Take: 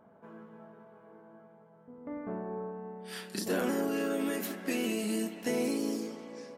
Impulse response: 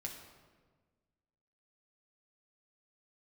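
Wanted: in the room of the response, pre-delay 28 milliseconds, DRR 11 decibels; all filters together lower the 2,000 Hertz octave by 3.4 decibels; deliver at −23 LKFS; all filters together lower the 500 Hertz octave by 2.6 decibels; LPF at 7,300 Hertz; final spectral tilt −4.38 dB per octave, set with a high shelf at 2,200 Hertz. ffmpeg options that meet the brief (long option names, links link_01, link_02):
-filter_complex "[0:a]lowpass=7300,equalizer=frequency=500:width_type=o:gain=-3,equalizer=frequency=2000:width_type=o:gain=-6.5,highshelf=frequency=2200:gain=3.5,asplit=2[link_01][link_02];[1:a]atrim=start_sample=2205,adelay=28[link_03];[link_02][link_03]afir=irnorm=-1:irlink=0,volume=-9dB[link_04];[link_01][link_04]amix=inputs=2:normalize=0,volume=12dB"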